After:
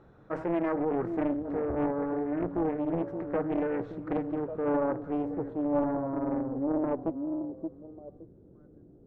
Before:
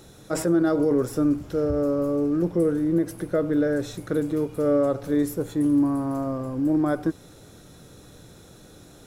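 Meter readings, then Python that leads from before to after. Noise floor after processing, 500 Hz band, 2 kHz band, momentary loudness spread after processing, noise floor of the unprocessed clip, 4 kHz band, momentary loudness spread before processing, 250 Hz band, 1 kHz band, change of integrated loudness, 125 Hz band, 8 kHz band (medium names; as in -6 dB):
-56 dBFS, -6.0 dB, -6.0 dB, 7 LU, -49 dBFS, no reading, 6 LU, -7.5 dB, 0.0 dB, -7.0 dB, -9.5 dB, under -35 dB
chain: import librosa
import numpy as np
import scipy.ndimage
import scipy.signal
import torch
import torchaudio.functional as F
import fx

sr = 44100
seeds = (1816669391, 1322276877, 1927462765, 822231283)

y = fx.echo_stepped(x, sr, ms=571, hz=250.0, octaves=1.4, feedback_pct=70, wet_db=-4.5)
y = fx.filter_sweep_lowpass(y, sr, from_hz=1300.0, to_hz=380.0, start_s=4.35, end_s=8.3, q=1.5)
y = fx.doppler_dist(y, sr, depth_ms=0.88)
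y = F.gain(torch.from_numpy(y), -8.0).numpy()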